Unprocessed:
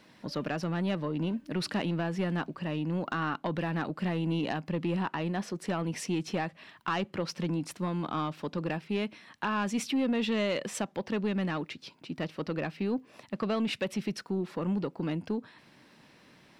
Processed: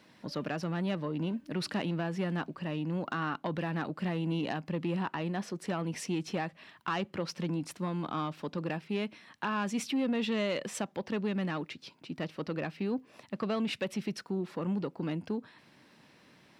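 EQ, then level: high-pass 49 Hz; -2.0 dB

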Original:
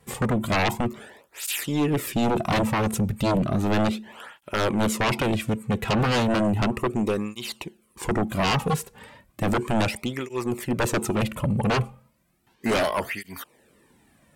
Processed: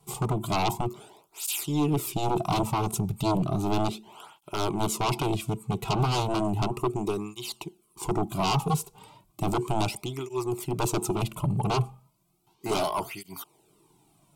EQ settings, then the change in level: static phaser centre 350 Hz, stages 8; 0.0 dB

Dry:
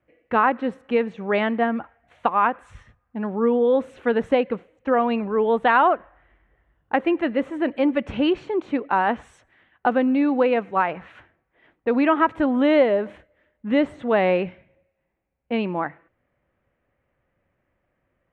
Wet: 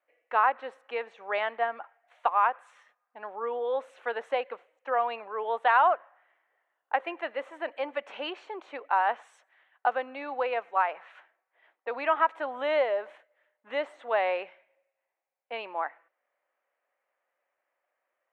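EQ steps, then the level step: ladder high-pass 530 Hz, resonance 25%; 0.0 dB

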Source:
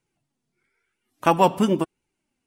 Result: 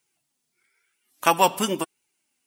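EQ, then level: tilt EQ +3.5 dB/octave; 0.0 dB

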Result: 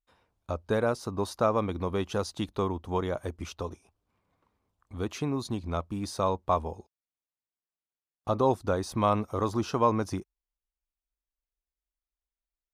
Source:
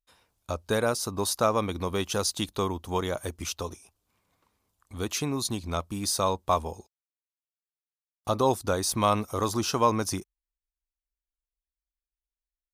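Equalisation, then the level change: low-pass 1.4 kHz 6 dB/octave; 0.0 dB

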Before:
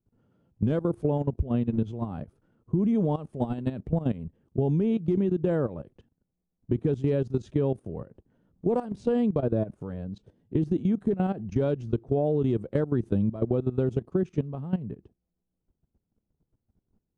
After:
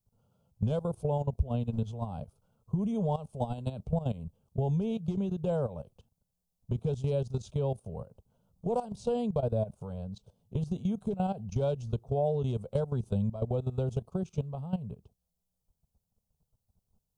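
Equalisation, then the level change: treble shelf 2.8 kHz +8.5 dB; static phaser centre 760 Hz, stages 4; dynamic bell 1.2 kHz, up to -6 dB, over -58 dBFS, Q 4.9; 0.0 dB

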